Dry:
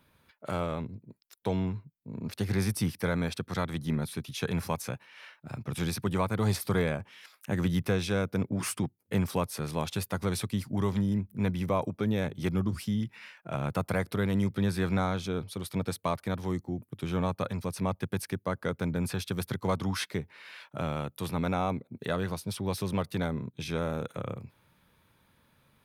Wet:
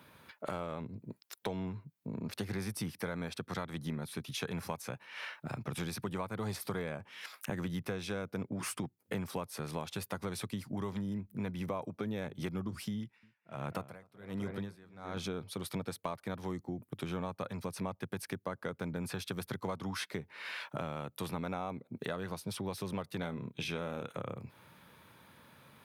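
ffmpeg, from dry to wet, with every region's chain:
-filter_complex "[0:a]asettb=1/sr,asplit=3[s0][s1][s2];[s0]atrim=end=12.974[s3];[s1]atrim=start=12.97:end=15.17,asetpts=PTS-STARTPTS,afade=t=in:d=0.004:c=qsin,afade=t=out:st=2.196:d=0.004:c=qsin,asplit=2[s4][s5];[s5]adelay=257,lowpass=f=1900:p=1,volume=0.422,asplit=2[s6][s7];[s7]adelay=257,lowpass=f=1900:p=1,volume=0.41,asplit=2[s8][s9];[s9]adelay=257,lowpass=f=1900:p=1,volume=0.41,asplit=2[s10][s11];[s11]adelay=257,lowpass=f=1900:p=1,volume=0.41,asplit=2[s12][s13];[s13]adelay=257,lowpass=f=1900:p=1,volume=0.41[s14];[s4][s6][s8][s10][s12][s14]amix=inputs=6:normalize=0,atrim=end_sample=97020,aeval=exprs='val(0)*pow(10,-36*(0.5-0.5*cos(2*PI*1.3*n/s))/20)':c=same[s15];[s2]atrim=start=15.166[s16];[s3][s15]acrossfade=d=0.004:c1=hsin:c2=qsin[s17];[s17][s16]acrossfade=d=0.004:c1=qsin:c2=hsin,asettb=1/sr,asplit=3[s18][s19][s20];[s18]atrim=end=23.204[s21];[s19]atrim=start=23.2:end=24.13,asetpts=PTS-STARTPTS,afade=t=in:d=0.004:c=qsin,afade=t=out:st=0.926:d=0.004:c=qsin,equalizer=f=2800:t=o:w=0.61:g=7,asplit=2[s22][s23];[s23]adelay=29,volume=0.251[s24];[s22][s24]amix=inputs=2:normalize=0,atrim=end_sample=41013[s25];[s20]atrim=start=24.126[s26];[s21][s25]acrossfade=d=0.004:c1=hsin:c2=qsin[s27];[s27][s26]acrossfade=d=0.004:c1=qsin:c2=hsin,highpass=100,equalizer=f=990:w=0.44:g=3,acompressor=threshold=0.00631:ratio=4,volume=2"

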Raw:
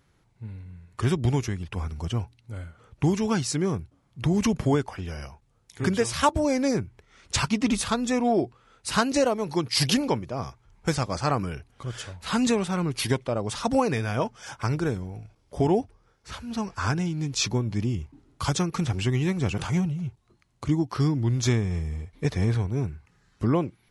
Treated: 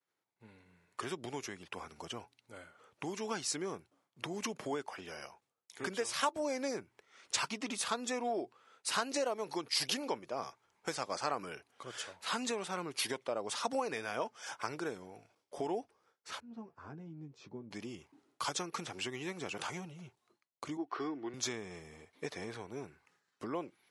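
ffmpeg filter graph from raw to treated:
-filter_complex "[0:a]asettb=1/sr,asplit=3[s0][s1][s2];[s0]atrim=end=16.404[s3];[s1]atrim=start=16.4:end=17.71,asetpts=PTS-STARTPTS,afade=t=in:d=0.004:c=qsin,afade=t=out:st=1.306:d=0.004:c=qsin,bandpass=f=100:t=q:w=0.76,asplit=2[s4][s5];[s5]adelay=13,volume=0.398[s6];[s4][s6]amix=inputs=2:normalize=0,atrim=end_sample=57771[s7];[s2]atrim=start=17.706[s8];[s3][s7]acrossfade=d=0.004:c1=hsin:c2=qsin[s9];[s9][s8]acrossfade=d=0.004:c1=qsin:c2=hsin,asettb=1/sr,asplit=3[s10][s11][s12];[s10]atrim=end=20.774[s13];[s11]atrim=start=20.77:end=21.34,asetpts=PTS-STARTPTS,afade=t=in:d=0.004:c=qsin,afade=t=out:st=0.566:d=0.004:c=qsin,highpass=230,lowpass=2500,aecho=1:1:2.7:0.42,atrim=end_sample=25137[s14];[s12]atrim=start=21.336[s15];[s13][s14]acrossfade=d=0.004:c1=hsin:c2=qsin[s16];[s16][s15]acrossfade=d=0.004:c1=qsin:c2=hsin,agate=range=0.0224:threshold=0.00178:ratio=3:detection=peak,acompressor=threshold=0.0501:ratio=3,highpass=400,volume=0.631"

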